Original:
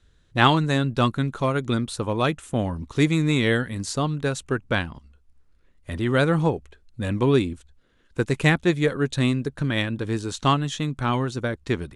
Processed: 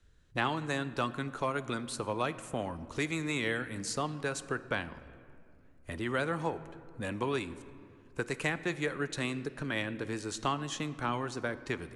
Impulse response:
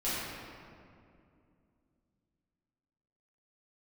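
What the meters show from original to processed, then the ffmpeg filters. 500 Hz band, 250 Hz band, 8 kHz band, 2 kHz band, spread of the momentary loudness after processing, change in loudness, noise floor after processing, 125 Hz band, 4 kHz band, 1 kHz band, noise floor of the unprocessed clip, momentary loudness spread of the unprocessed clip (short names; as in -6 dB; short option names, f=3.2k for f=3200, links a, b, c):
-10.5 dB, -13.0 dB, -5.0 dB, -8.0 dB, 11 LU, -11.5 dB, -58 dBFS, -16.0 dB, -11.0 dB, -9.5 dB, -60 dBFS, 9 LU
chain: -filter_complex "[0:a]equalizer=f=3.6k:t=o:w=0.28:g=-6,acrossover=split=260|630[a][b][c];[a]acompressor=threshold=-39dB:ratio=4[d];[b]acompressor=threshold=-33dB:ratio=4[e];[c]acompressor=threshold=-26dB:ratio=4[f];[d][e][f]amix=inputs=3:normalize=0,asplit=2[g][h];[1:a]atrim=start_sample=2205[i];[h][i]afir=irnorm=-1:irlink=0,volume=-21dB[j];[g][j]amix=inputs=2:normalize=0,volume=-5dB"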